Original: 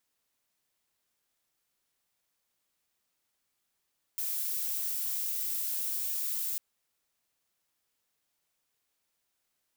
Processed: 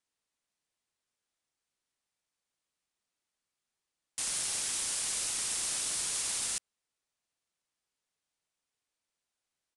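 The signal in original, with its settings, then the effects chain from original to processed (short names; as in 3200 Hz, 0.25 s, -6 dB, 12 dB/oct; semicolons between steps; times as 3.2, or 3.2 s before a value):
noise violet, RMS -33 dBFS 2.40 s
sample leveller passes 3; downsampling 22050 Hz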